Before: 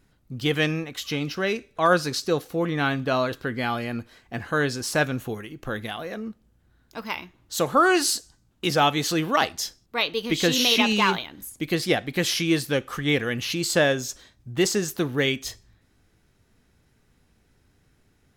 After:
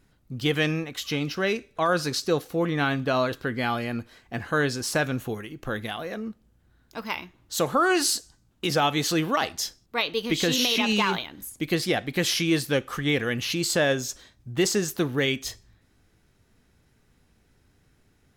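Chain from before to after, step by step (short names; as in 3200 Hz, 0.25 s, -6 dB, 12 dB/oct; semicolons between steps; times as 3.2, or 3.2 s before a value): limiter -13 dBFS, peak gain reduction 5 dB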